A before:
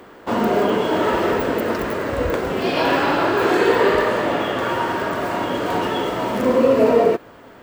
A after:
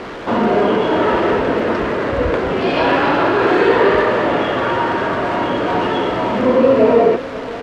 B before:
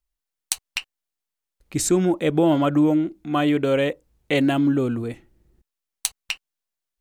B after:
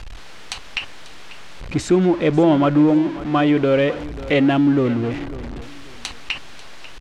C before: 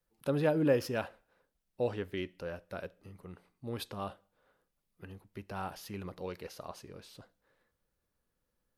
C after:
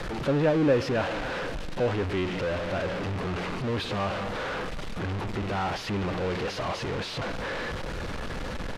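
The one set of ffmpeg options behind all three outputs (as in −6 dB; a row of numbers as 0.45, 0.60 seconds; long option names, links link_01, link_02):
-af "aeval=exprs='val(0)+0.5*0.0422*sgn(val(0))':channel_layout=same,lowpass=3500,aecho=1:1:542|1084|1626:0.141|0.0396|0.0111,volume=2.5dB"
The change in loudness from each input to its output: +3.5, +4.0, +6.5 LU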